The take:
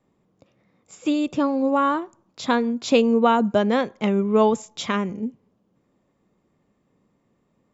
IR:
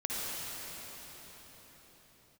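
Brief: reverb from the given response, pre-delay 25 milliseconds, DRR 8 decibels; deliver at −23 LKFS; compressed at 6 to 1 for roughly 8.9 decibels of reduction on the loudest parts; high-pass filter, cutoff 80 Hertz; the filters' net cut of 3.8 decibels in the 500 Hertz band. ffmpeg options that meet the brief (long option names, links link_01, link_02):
-filter_complex "[0:a]highpass=80,equalizer=frequency=500:width_type=o:gain=-4.5,acompressor=threshold=-24dB:ratio=6,asplit=2[link_01][link_02];[1:a]atrim=start_sample=2205,adelay=25[link_03];[link_02][link_03]afir=irnorm=-1:irlink=0,volume=-14.5dB[link_04];[link_01][link_04]amix=inputs=2:normalize=0,volume=5.5dB"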